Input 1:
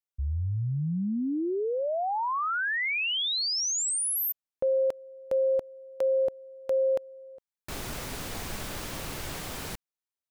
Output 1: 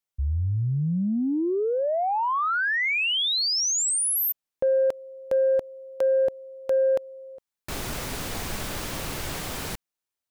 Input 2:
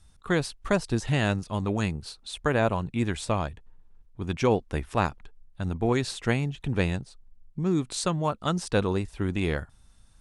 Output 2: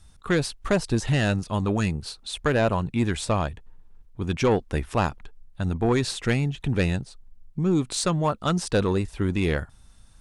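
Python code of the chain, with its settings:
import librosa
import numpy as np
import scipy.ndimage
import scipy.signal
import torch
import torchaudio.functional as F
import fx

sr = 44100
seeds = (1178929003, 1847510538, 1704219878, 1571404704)

y = 10.0 ** (-17.5 / 20.0) * np.tanh(x / 10.0 ** (-17.5 / 20.0))
y = F.gain(torch.from_numpy(y), 4.5).numpy()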